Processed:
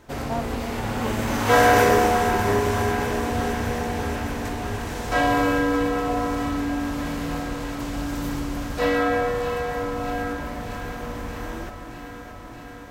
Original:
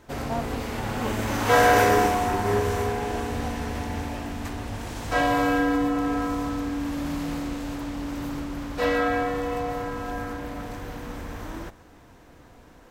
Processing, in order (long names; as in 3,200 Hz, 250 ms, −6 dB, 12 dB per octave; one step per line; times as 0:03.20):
0:07.80–0:08.79: bass and treble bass +3 dB, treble +6 dB
on a send: delay that swaps between a low-pass and a high-pass 312 ms, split 900 Hz, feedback 87%, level −9 dB
on the sum: level +1.5 dB